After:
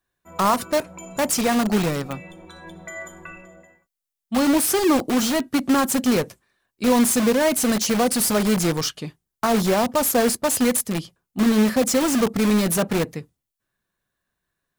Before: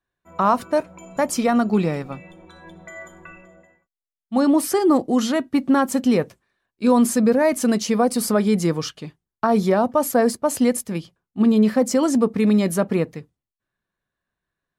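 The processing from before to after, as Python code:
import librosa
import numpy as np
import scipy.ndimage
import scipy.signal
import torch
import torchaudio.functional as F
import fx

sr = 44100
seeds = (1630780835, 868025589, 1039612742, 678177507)

p1 = fx.high_shelf(x, sr, hz=5600.0, db=9.0)
p2 = (np.mod(10.0 ** (18.5 / 20.0) * p1 + 1.0, 2.0) - 1.0) / 10.0 ** (18.5 / 20.0)
p3 = p1 + (p2 * librosa.db_to_amplitude(-4.0))
y = p3 * librosa.db_to_amplitude(-2.0)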